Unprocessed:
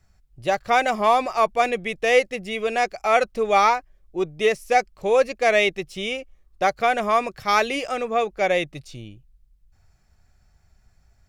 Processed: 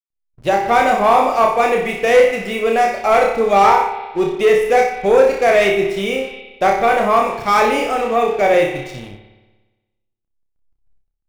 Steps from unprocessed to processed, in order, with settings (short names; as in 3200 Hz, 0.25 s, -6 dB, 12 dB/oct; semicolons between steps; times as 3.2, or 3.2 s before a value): backlash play -43 dBFS; flutter echo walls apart 5.2 m, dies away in 0.47 s; sample leveller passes 2; spring tank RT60 1.2 s, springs 58 ms, chirp 40 ms, DRR 8 dB; dynamic EQ 4000 Hz, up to -7 dB, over -29 dBFS, Q 0.71; gain -1 dB